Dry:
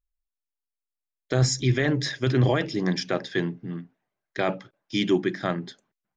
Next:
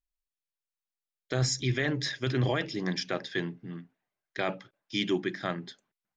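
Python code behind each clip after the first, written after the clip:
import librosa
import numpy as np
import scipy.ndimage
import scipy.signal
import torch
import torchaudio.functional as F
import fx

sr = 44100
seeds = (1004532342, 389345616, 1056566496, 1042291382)

y = fx.peak_eq(x, sr, hz=3100.0, db=5.0, octaves=2.7)
y = y * 10.0 ** (-7.0 / 20.0)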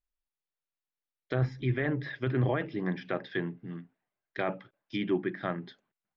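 y = fx.env_lowpass_down(x, sr, base_hz=2100.0, full_db=-27.5)
y = scipy.ndimage.gaussian_filter1d(y, 2.1, mode='constant')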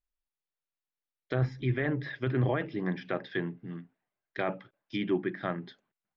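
y = x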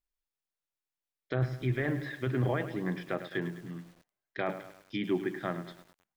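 y = fx.echo_crushed(x, sr, ms=104, feedback_pct=55, bits=8, wet_db=-11.5)
y = y * 10.0 ** (-1.5 / 20.0)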